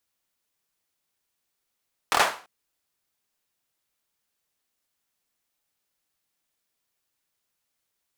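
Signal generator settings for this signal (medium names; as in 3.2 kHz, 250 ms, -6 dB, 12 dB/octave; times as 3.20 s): hand clap length 0.34 s, bursts 4, apart 25 ms, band 960 Hz, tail 0.37 s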